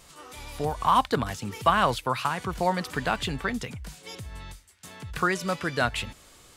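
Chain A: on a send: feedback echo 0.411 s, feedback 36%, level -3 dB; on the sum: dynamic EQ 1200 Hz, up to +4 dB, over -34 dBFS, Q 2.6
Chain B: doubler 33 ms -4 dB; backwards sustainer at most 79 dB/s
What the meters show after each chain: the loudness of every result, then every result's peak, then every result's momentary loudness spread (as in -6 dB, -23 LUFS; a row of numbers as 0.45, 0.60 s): -24.0, -24.5 LUFS; -5.5, -3.5 dBFS; 18, 19 LU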